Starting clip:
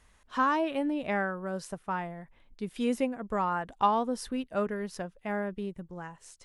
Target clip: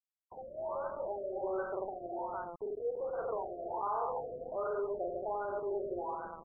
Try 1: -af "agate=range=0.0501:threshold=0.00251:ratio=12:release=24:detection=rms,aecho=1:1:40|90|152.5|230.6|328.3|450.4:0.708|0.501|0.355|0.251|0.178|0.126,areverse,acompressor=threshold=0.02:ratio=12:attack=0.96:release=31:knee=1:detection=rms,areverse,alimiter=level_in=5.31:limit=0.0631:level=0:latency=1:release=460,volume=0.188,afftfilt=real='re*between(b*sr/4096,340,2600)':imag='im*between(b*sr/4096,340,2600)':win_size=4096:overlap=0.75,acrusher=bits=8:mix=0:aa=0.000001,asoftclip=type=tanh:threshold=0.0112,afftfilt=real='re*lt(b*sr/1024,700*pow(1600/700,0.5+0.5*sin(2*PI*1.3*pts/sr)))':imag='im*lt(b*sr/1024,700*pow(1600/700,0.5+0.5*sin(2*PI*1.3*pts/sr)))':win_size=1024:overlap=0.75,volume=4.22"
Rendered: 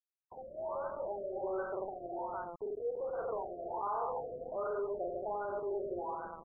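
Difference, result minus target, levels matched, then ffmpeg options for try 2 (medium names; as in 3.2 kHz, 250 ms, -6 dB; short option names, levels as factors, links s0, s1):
saturation: distortion +21 dB
-af "agate=range=0.0501:threshold=0.00251:ratio=12:release=24:detection=rms,aecho=1:1:40|90|152.5|230.6|328.3|450.4:0.708|0.501|0.355|0.251|0.178|0.126,areverse,acompressor=threshold=0.02:ratio=12:attack=0.96:release=31:knee=1:detection=rms,areverse,alimiter=level_in=5.31:limit=0.0631:level=0:latency=1:release=460,volume=0.188,afftfilt=real='re*between(b*sr/4096,340,2600)':imag='im*between(b*sr/4096,340,2600)':win_size=4096:overlap=0.75,acrusher=bits=8:mix=0:aa=0.000001,asoftclip=type=tanh:threshold=0.0422,afftfilt=real='re*lt(b*sr/1024,700*pow(1600/700,0.5+0.5*sin(2*PI*1.3*pts/sr)))':imag='im*lt(b*sr/1024,700*pow(1600/700,0.5+0.5*sin(2*PI*1.3*pts/sr)))':win_size=1024:overlap=0.75,volume=4.22"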